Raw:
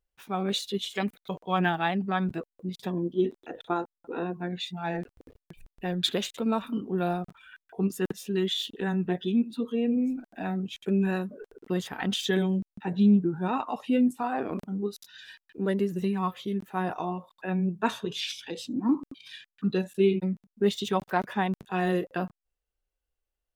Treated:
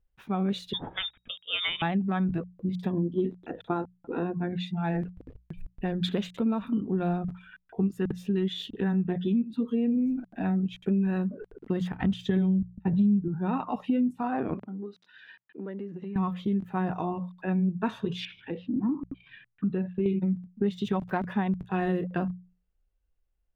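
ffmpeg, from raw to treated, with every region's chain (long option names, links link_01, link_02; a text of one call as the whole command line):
ffmpeg -i in.wav -filter_complex "[0:a]asettb=1/sr,asplit=3[link_01][link_02][link_03];[link_01]atrim=end=0.734[link_04];[link_02]atrim=start=0.73:end=1.82,asetpts=PTS-STARTPTS,afade=type=in:duration=0.004:curve=qsin,afade=type=out:start_time=1.086:duration=0.004:curve=qsin,asubboost=boost=11:cutoff=53,lowpass=frequency=3200:width_type=q:width=0.5098,lowpass=frequency=3200:width_type=q:width=0.6013,lowpass=frequency=3200:width_type=q:width=0.9,lowpass=frequency=3200:width_type=q:width=2.563,afreqshift=-3800[link_05];[link_03]atrim=start=1.816[link_06];[link_04][link_05]acrossfade=duration=0.004:curve1=hsin:curve2=qsin[link_07];[link_07][link_06]acrossfade=duration=0.004:curve1=qsin:curve2=hsin,asettb=1/sr,asplit=3[link_08][link_09][link_10];[link_08]atrim=end=11.924[link_11];[link_09]atrim=start=11.92:end=13.28,asetpts=PTS-STARTPTS,afade=type=in:duration=0.004:curve=qsin,afade=type=out:start_time=1.356:duration=0.004:curve=qsin,equalizer=frequency=73:width=0.62:gain=12.5,bandreject=frequency=1600:width=19,agate=range=-33dB:threshold=-30dB:ratio=3:release=100:detection=peak[link_12];[link_10]atrim=start=13.276[link_13];[link_11][link_12]acrossfade=duration=0.004:curve1=hsin:curve2=qsin[link_14];[link_14][link_13]acrossfade=duration=0.004:curve1=qsin:curve2=hsin,asettb=1/sr,asplit=3[link_15][link_16][link_17];[link_15]atrim=end=14.544[link_18];[link_16]atrim=start=14.54:end=16.16,asetpts=PTS-STARTPTS,afade=type=in:duration=0.004:curve=qsin,afade=type=out:start_time=1.616:duration=0.004:curve=qsin,acompressor=threshold=-35dB:ratio=5:attack=3.2:release=140:knee=1:detection=peak,highpass=290,lowpass=2800[link_19];[link_17]atrim=start=16.156[link_20];[link_18][link_19]acrossfade=duration=0.004:curve1=hsin:curve2=qsin[link_21];[link_21][link_20]acrossfade=duration=0.004:curve1=qsin:curve2=hsin,asettb=1/sr,asplit=3[link_22][link_23][link_24];[link_22]atrim=end=18.254[link_25];[link_23]atrim=start=18.25:end=20.06,asetpts=PTS-STARTPTS,afade=type=in:duration=0.004:curve=qsin,afade=type=out:start_time=1.806:duration=0.004:curve=qsin,lowpass=frequency=2600:width=0.5412,lowpass=frequency=2600:width=1.3066,acompressor=threshold=-30dB:ratio=2:attack=3.2:release=140:knee=1:detection=peak[link_26];[link_24]atrim=start=20.056[link_27];[link_25][link_26]acrossfade=duration=0.004:curve1=hsin:curve2=qsin[link_28];[link_28][link_27]acrossfade=duration=0.004:curve1=qsin:curve2=hsin,bass=frequency=250:gain=12,treble=frequency=4000:gain=-13,bandreject=frequency=60:width_type=h:width=6,bandreject=frequency=120:width_type=h:width=6,bandreject=frequency=180:width_type=h:width=6,acompressor=threshold=-24dB:ratio=4" out.wav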